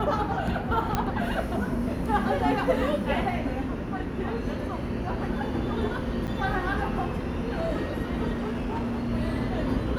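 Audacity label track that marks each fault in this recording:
0.950000	0.950000	click −11 dBFS
6.270000	6.280000	drop-out 8.4 ms
8.320000	9.100000	clipping −26 dBFS

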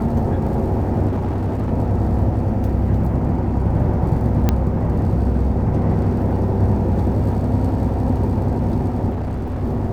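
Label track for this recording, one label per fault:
1.070000	1.720000	clipping −17.5 dBFS
4.490000	4.490000	click −4 dBFS
9.100000	9.640000	clipping −20.5 dBFS

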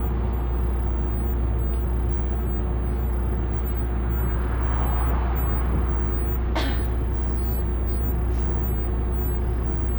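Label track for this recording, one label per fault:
6.370000	7.990000	clipping −18.5 dBFS

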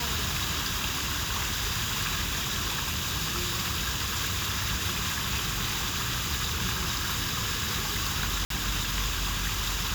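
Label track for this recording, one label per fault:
8.450000	8.500000	drop-out 53 ms

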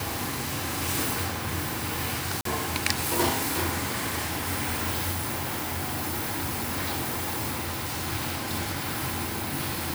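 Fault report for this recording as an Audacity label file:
2.410000	2.450000	drop-out 43 ms
5.110000	8.080000	clipping −26 dBFS

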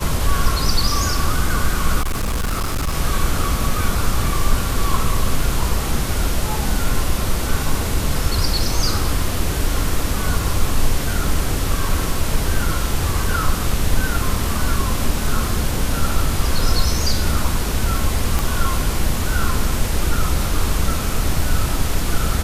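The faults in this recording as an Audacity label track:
2.010000	2.940000	clipping −17 dBFS
18.390000	18.390000	click

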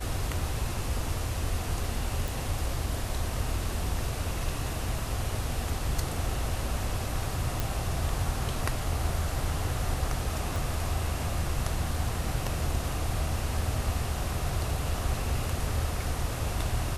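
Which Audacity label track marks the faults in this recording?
2.280000	2.280000	click
7.600000	7.600000	click
10.560000	10.560000	click

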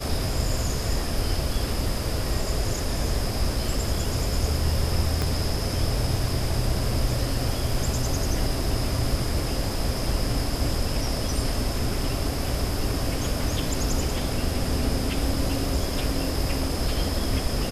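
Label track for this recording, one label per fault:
5.220000	5.220000	click −11 dBFS

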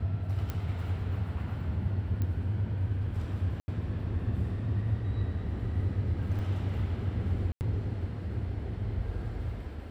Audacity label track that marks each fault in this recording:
0.500000	0.500000	click −20 dBFS
2.220000	2.220000	click −22 dBFS
3.600000	3.680000	drop-out 80 ms
6.390000	6.390000	drop-out 4.1 ms
7.520000	7.610000	drop-out 89 ms

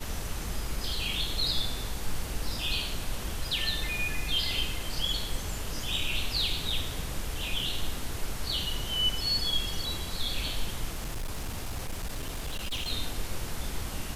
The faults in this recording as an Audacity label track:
10.920000	12.890000	clipping −29.5 dBFS

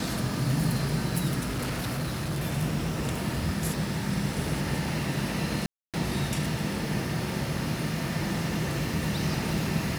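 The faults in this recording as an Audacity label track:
1.450000	2.440000	clipping −26.5 dBFS
5.660000	5.940000	drop-out 277 ms

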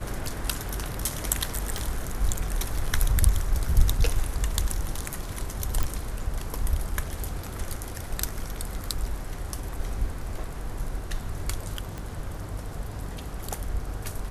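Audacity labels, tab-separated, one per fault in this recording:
1.780000	1.780000	click
5.830000	5.830000	click
11.980000	11.980000	click

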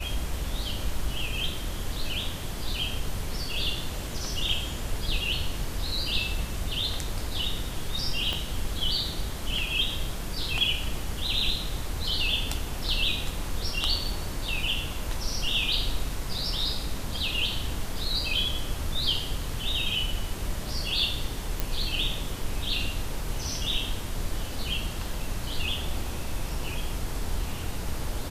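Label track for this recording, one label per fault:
8.330000	8.330000	click −15 dBFS
21.600000	21.600000	click

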